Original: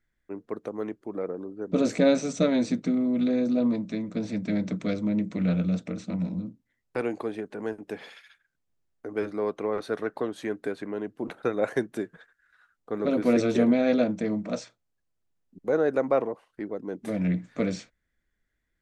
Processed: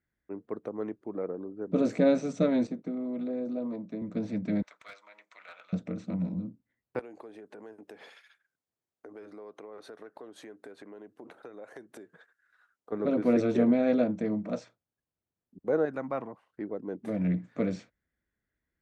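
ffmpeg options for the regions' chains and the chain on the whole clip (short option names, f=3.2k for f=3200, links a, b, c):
-filter_complex "[0:a]asettb=1/sr,asplit=3[a][b][c];[a]atrim=end=2.674[d];[b]atrim=start=2.67:end=4.02,asetpts=PTS-STARTPTS,afade=t=in:d=0.004:c=qsin,afade=t=out:st=1.346:d=0.004:c=qsin,agate=range=-33dB:threshold=-38dB:ratio=3:release=100:detection=peak,highpass=f=190:p=1,acrossover=split=390|1100[e][f][g];[e]acompressor=threshold=-34dB:ratio=4[h];[f]acompressor=threshold=-32dB:ratio=4[i];[g]acompressor=threshold=-55dB:ratio=4[j];[h][i][j]amix=inputs=3:normalize=0[k];[c]atrim=start=4.016[l];[d][k]acrossfade=d=0.004:c1=hsin:c2=qsin[m];[m][l]acrossfade=d=0.004:c1=qsin:c2=hsin,asettb=1/sr,asplit=3[n][o][p];[n]atrim=end=4.624[q];[o]atrim=start=4.62:end=5.73,asetpts=PTS-STARTPTS,afade=t=in:d=0.004:c=qsin,afade=t=out:st=1.106:d=0.004:c=qsin,highpass=f=960:w=0.5412,highpass=f=960:w=1.3066,asoftclip=type=hard:threshold=-34.5dB[r];[p]atrim=start=5.726[s];[q][r]acrossfade=d=0.004:c1=hsin:c2=qsin[t];[t][s]acrossfade=d=0.004:c1=qsin:c2=hsin,asettb=1/sr,asplit=3[u][v][w];[u]atrim=end=6.994[x];[v]atrim=start=6.99:end=12.92,asetpts=PTS-STARTPTS,afade=t=in:d=0.004:c=qsin,afade=t=out:st=5.926:d=0.004:c=qsin,highpass=63,acompressor=threshold=-39dB:ratio=6:attack=3.2:release=140:knee=1:detection=peak,bass=f=250:g=-9,treble=f=4k:g=7[y];[w]atrim=start=12.916[z];[x][y]acrossfade=d=0.004:c1=hsin:c2=qsin[aa];[aa][z]acrossfade=d=0.004:c1=qsin:c2=hsin,asettb=1/sr,asplit=3[ab][ac][ad];[ab]atrim=end=15.854[ae];[ac]atrim=start=15.85:end=16.45,asetpts=PTS-STARTPTS,afade=t=in:d=0.004:c=qsin,afade=t=out:st=0.596:d=0.004:c=qsin,highpass=59,equalizer=f=450:w=1.3:g=-12[af];[ad]atrim=start=16.446[ag];[ae][af]acrossfade=d=0.004:c1=hsin:c2=qsin[ah];[ah][ag]acrossfade=d=0.004:c1=qsin:c2=hsin,highpass=60,highshelf=f=2.6k:g=-11.5,volume=-2dB"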